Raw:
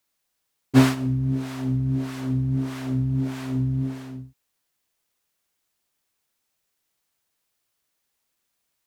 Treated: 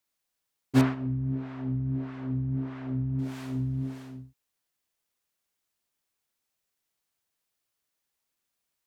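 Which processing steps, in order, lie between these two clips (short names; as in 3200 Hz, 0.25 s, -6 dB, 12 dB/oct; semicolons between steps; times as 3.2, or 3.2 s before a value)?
0.81–3.19 LPF 2000 Hz 12 dB/oct; gain -6 dB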